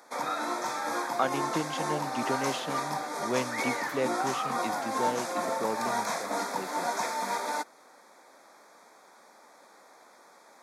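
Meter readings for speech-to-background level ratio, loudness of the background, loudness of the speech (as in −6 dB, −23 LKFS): −4.0 dB, −31.5 LKFS, −35.5 LKFS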